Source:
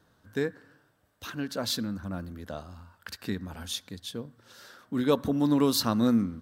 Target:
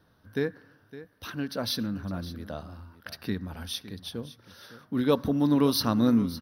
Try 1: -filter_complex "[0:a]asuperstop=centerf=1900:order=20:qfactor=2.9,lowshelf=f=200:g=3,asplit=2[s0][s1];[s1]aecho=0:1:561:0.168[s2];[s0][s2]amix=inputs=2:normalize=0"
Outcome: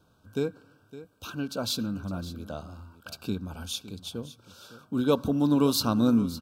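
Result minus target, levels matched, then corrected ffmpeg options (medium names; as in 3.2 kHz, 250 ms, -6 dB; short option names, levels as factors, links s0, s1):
2 kHz band -3.5 dB
-filter_complex "[0:a]asuperstop=centerf=7400:order=20:qfactor=2.9,lowshelf=f=200:g=3,asplit=2[s0][s1];[s1]aecho=0:1:561:0.168[s2];[s0][s2]amix=inputs=2:normalize=0"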